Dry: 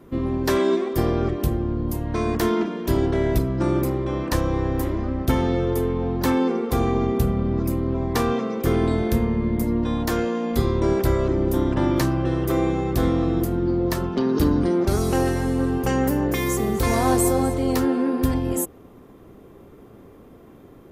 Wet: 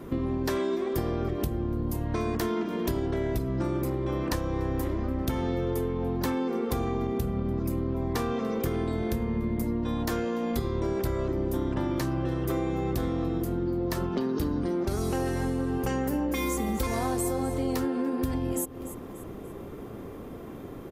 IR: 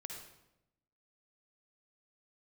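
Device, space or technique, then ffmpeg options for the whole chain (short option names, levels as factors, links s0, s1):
serial compression, peaks first: -filter_complex "[0:a]asettb=1/sr,asplit=3[s0][s1][s2];[s0]atrim=end=16.134[s3];[s1]atrim=start=16.13:end=16.87,asetpts=PTS-STARTPTS,afade=t=in:d=0.004:c=qsin,afade=t=out:st=0.736:d=0.004:c=qsin,aecho=1:1:3.7:0.84,atrim=end_sample=32634[s4];[s2]atrim=start=16.866[s5];[s3][s4]acrossfade=d=0.004:c1=hsin:c2=qsin[s6];[s6][s5]acrossfade=d=0.004:c1=qsin:c2=hsin,aecho=1:1:291|582|873:0.0631|0.0259|0.0106,acompressor=threshold=0.0355:ratio=4,acompressor=threshold=0.0126:ratio=1.5,volume=2"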